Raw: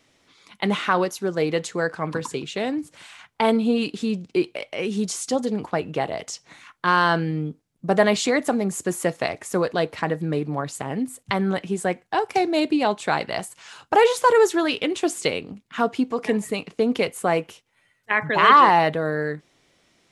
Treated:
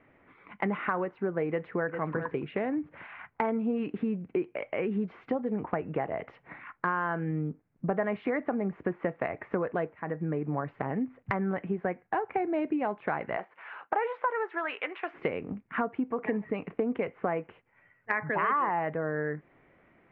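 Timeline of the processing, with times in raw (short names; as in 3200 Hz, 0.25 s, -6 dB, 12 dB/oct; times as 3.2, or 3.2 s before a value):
1.48–1.9 echo throw 0.4 s, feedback 10%, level -10 dB
9.93–10.59 fade in linear, from -18.5 dB
13.36–15.13 HPF 360 Hz -> 1200 Hz
whole clip: steep low-pass 2200 Hz 36 dB/oct; compressor 4:1, threshold -31 dBFS; gain +2.5 dB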